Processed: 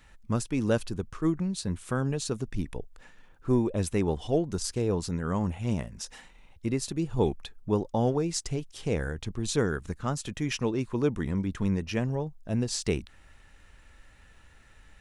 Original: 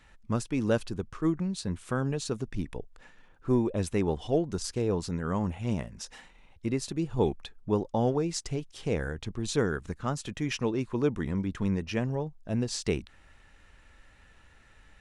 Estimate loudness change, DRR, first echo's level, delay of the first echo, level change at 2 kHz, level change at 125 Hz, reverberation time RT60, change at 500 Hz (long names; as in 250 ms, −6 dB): +1.0 dB, no reverb audible, no echo audible, no echo audible, +0.5 dB, +1.5 dB, no reverb audible, +0.5 dB